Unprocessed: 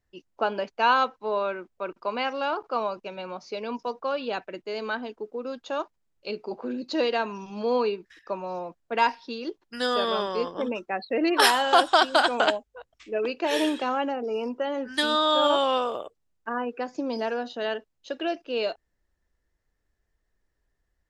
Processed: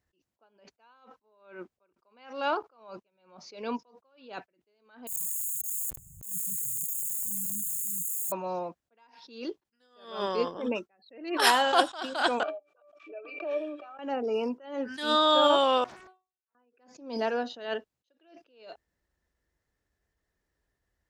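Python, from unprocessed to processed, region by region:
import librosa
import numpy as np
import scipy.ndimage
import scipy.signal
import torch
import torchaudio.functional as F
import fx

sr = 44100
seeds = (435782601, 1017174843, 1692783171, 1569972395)

y = fx.chain(x, sr, fx.crossing_spikes(level_db=-23.5),
    fx.brickwall_bandstop(low_hz=180.0, high_hz=6500.0),
    fx.env_flatten(amount_pct=100), at=(5.07, 8.32))
y = fx.chain(y, sr, fx.highpass(hz=420.0, slope=24),
    fx.octave_resonator(note='D', decay_s=0.11),
    fx.pre_swell(db_per_s=61.0), at=(12.43, 13.99))
y = fx.chain(y, sr, fx.stiff_resonator(f0_hz=370.0, decay_s=0.29, stiffness=0.002),
    fx.transient(attack_db=-9, sustain_db=5),
    fx.doppler_dist(depth_ms=0.9), at=(15.84, 16.55))
y = scipy.signal.sosfilt(scipy.signal.butter(2, 54.0, 'highpass', fs=sr, output='sos'), y)
y = fx.attack_slew(y, sr, db_per_s=110.0)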